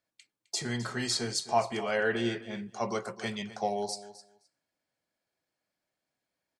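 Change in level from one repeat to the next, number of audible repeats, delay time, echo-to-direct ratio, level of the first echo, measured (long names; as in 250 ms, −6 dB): −16.5 dB, 2, 260 ms, −15.5 dB, −15.5 dB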